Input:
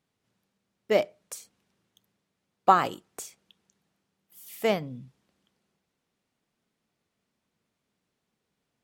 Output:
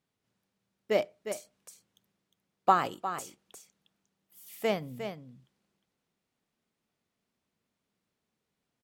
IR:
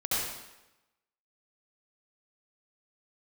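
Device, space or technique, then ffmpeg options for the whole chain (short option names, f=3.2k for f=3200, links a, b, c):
ducked delay: -filter_complex "[0:a]asplit=3[a][b][c];[b]adelay=356,volume=-7.5dB[d];[c]apad=whole_len=405169[e];[d][e]sidechaincompress=threshold=-40dB:ratio=8:attack=9.8:release=211[f];[a][f]amix=inputs=2:normalize=0,volume=-4dB"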